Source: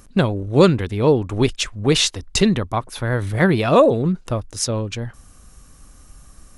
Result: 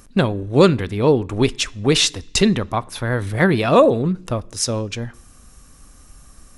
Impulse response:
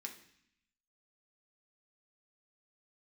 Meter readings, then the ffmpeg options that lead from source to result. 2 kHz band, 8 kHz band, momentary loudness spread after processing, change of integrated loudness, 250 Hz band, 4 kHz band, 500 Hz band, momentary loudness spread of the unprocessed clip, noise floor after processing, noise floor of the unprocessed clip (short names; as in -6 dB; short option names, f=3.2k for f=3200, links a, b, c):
+1.5 dB, +1.0 dB, 11 LU, +0.5 dB, +0.5 dB, +1.5 dB, +0.5 dB, 11 LU, -47 dBFS, -48 dBFS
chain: -filter_complex "[0:a]asplit=2[a][b];[1:a]atrim=start_sample=2205[c];[b][c]afir=irnorm=-1:irlink=0,volume=-10.5dB[d];[a][d]amix=inputs=2:normalize=0"